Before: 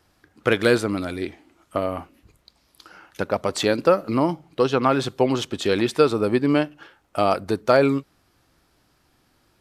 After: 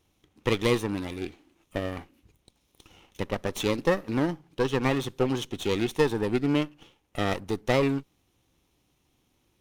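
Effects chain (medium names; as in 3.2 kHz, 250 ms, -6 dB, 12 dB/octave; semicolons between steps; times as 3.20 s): comb filter that takes the minimum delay 0.32 ms; peaking EQ 640 Hz -7 dB 0.23 oct; trim -5.5 dB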